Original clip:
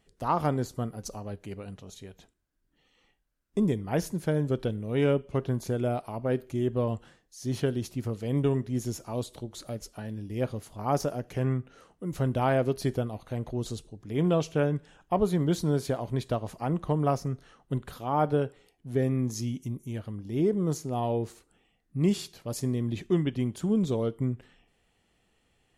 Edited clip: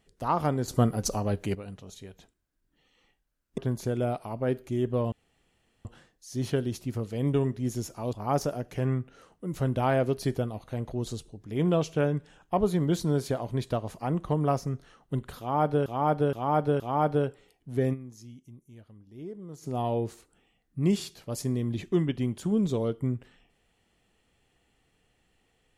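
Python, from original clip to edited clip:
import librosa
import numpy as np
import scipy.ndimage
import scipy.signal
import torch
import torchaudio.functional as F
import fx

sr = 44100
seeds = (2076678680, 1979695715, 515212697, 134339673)

y = fx.edit(x, sr, fx.clip_gain(start_s=0.68, length_s=0.87, db=9.5),
    fx.cut(start_s=3.58, length_s=1.83),
    fx.insert_room_tone(at_s=6.95, length_s=0.73),
    fx.cut(start_s=9.23, length_s=1.49),
    fx.repeat(start_s=17.98, length_s=0.47, count=4),
    fx.fade_down_up(start_s=19.11, length_s=1.71, db=-15.0, fade_s=0.15, curve='exp'), tone=tone)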